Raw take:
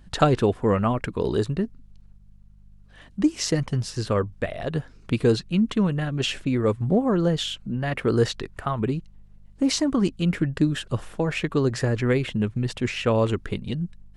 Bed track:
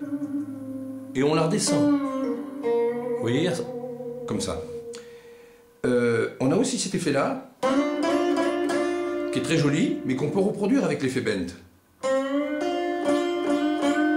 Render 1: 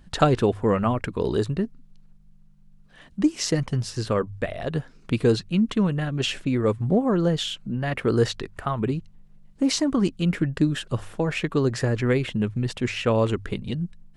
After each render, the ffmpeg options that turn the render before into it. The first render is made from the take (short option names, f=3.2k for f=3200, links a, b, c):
-af "bandreject=f=50:t=h:w=4,bandreject=f=100:t=h:w=4"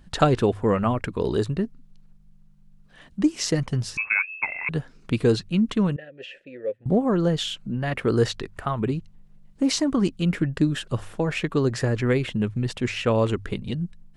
-filter_complex "[0:a]asettb=1/sr,asplit=3[a][b][c];[a]atrim=end=3.974[d];[b]atrim=start=3.97:end=4.69,asetpts=PTS-STARTPTS,afade=t=in:d=0.004:c=qsin,afade=t=out:st=0.716:d=0.004:c=qsin,lowpass=f=2.3k:t=q:w=0.5098,lowpass=f=2.3k:t=q:w=0.6013,lowpass=f=2.3k:t=q:w=0.9,lowpass=f=2.3k:t=q:w=2.563,afreqshift=-2700[e];[c]atrim=start=4.686[f];[d][e]acrossfade=d=0.004:c1=hsin:c2=qsin[g];[g][f]acrossfade=d=0.004:c1=qsin:c2=hsin,asettb=1/sr,asplit=3[h][i][j];[h]atrim=end=5.964[k];[i]atrim=start=5.96:end=6.86,asetpts=PTS-STARTPTS,afade=t=in:d=0.004:c=qsin,afade=t=out:st=0.896:d=0.004:c=qsin,asplit=3[l][m][n];[l]bandpass=f=530:t=q:w=8,volume=0dB[o];[m]bandpass=f=1.84k:t=q:w=8,volume=-6dB[p];[n]bandpass=f=2.48k:t=q:w=8,volume=-9dB[q];[o][p][q]amix=inputs=3:normalize=0[r];[j]atrim=start=6.856[s];[k][r]acrossfade=d=0.004:c1=hsin:c2=qsin[t];[t][s]acrossfade=d=0.004:c1=qsin:c2=hsin"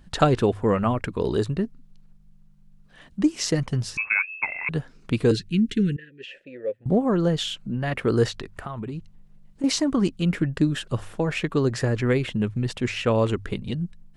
-filter_complex "[0:a]asettb=1/sr,asplit=3[a][b][c];[a]atrim=end=5.314[d];[b]atrim=start=5.31:end=6.28,asetpts=PTS-STARTPTS,afade=t=in:d=0.004:c=qsin,afade=t=out:st=0.966:d=0.004:c=qsin,asuperstop=centerf=820:order=12:qfactor=0.78[e];[c]atrim=start=6.276[f];[d][e]acrossfade=d=0.004:c1=hsin:c2=qsin[g];[g][f]acrossfade=d=0.004:c1=qsin:c2=hsin,asettb=1/sr,asplit=3[h][i][j];[h]atrim=end=8.284[k];[i]atrim=start=8.28:end=9.64,asetpts=PTS-STARTPTS,afade=t=in:d=0.004:c=qsin,afade=t=out:st=1.356:d=0.004:c=qsin,acompressor=threshold=-28dB:ratio=12:attack=3.2:release=140:knee=1:detection=peak[l];[j]atrim=start=9.636[m];[k][l]acrossfade=d=0.004:c1=hsin:c2=qsin[n];[n][m]acrossfade=d=0.004:c1=qsin:c2=hsin"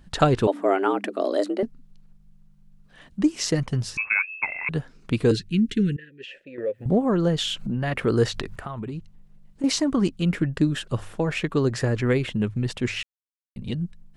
-filter_complex "[0:a]asettb=1/sr,asplit=3[a][b][c];[a]atrim=end=0.474[d];[b]atrim=start=0.47:end=1.63,asetpts=PTS-STARTPTS,afade=t=in:d=0.004:c=qsin,afade=t=out:st=1.156:d=0.004:c=qsin,afreqshift=190[e];[c]atrim=start=1.626[f];[d][e]acrossfade=d=0.004:c1=hsin:c2=qsin[g];[g][f]acrossfade=d=0.004:c1=qsin:c2=hsin,asettb=1/sr,asplit=3[h][i][j];[h]atrim=end=6.584[k];[i]atrim=start=6.58:end=8.56,asetpts=PTS-STARTPTS,afade=t=in:d=0.004:c=qsin,afade=t=out:st=1.976:d=0.004:c=qsin,acompressor=mode=upward:threshold=-21dB:ratio=2.5:attack=3.2:release=140:knee=2.83:detection=peak[l];[j]atrim=start=8.556[m];[k][l]acrossfade=d=0.004:c1=hsin:c2=qsin[n];[n][m]acrossfade=d=0.004:c1=qsin:c2=hsin,asplit=3[o][p][q];[o]atrim=end=13.03,asetpts=PTS-STARTPTS,afade=t=out:st=13.026:d=0.004:c=hsin[r];[p]atrim=start=13.03:end=13.56,asetpts=PTS-STARTPTS,volume=0[s];[q]atrim=start=13.56,asetpts=PTS-STARTPTS,afade=t=in:d=0.004:c=hsin[t];[r][s][t]concat=n=3:v=0:a=1"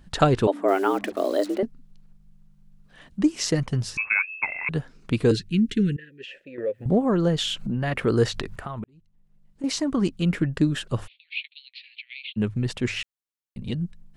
-filter_complex "[0:a]asettb=1/sr,asplit=3[a][b][c];[a]atrim=end=0.684[d];[b]atrim=start=0.68:end=1.58,asetpts=PTS-STARTPTS,afade=t=in:d=0.004:c=qsin,afade=t=out:st=0.896:d=0.004:c=qsin,acrusher=bits=6:mix=0:aa=0.5[e];[c]atrim=start=1.576[f];[d][e]acrossfade=d=0.004:c1=hsin:c2=qsin[g];[g][f]acrossfade=d=0.004:c1=qsin:c2=hsin,asplit=3[h][i][j];[h]afade=t=out:st=11.06:d=0.02[k];[i]asuperpass=centerf=3100:order=12:qfactor=1.5,afade=t=in:st=11.06:d=0.02,afade=t=out:st=12.36:d=0.02[l];[j]afade=t=in:st=12.36:d=0.02[m];[k][l][m]amix=inputs=3:normalize=0,asplit=2[n][o];[n]atrim=end=8.84,asetpts=PTS-STARTPTS,afade=t=out:st=8.836:d=0.004:c=hsin[p];[o]atrim=start=8.84,asetpts=PTS-STARTPTS,afade=t=in:d=1.35[q];[p][q]concat=n=2:v=0:a=1"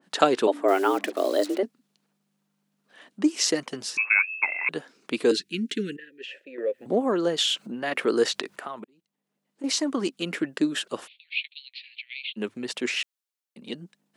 -af "highpass=f=270:w=0.5412,highpass=f=270:w=1.3066,adynamicequalizer=threshold=0.01:dfrequency=2200:dqfactor=0.7:tfrequency=2200:tqfactor=0.7:attack=5:release=100:ratio=0.375:range=2:mode=boostabove:tftype=highshelf"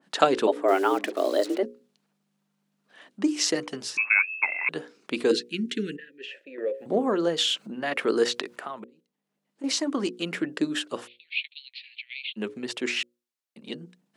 -af "highshelf=f=8.8k:g=-5,bandreject=f=60:t=h:w=6,bandreject=f=120:t=h:w=6,bandreject=f=180:t=h:w=6,bandreject=f=240:t=h:w=6,bandreject=f=300:t=h:w=6,bandreject=f=360:t=h:w=6,bandreject=f=420:t=h:w=6,bandreject=f=480:t=h:w=6,bandreject=f=540:t=h:w=6"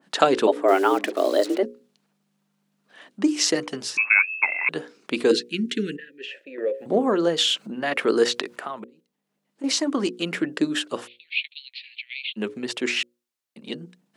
-af "volume=3.5dB,alimiter=limit=-3dB:level=0:latency=1"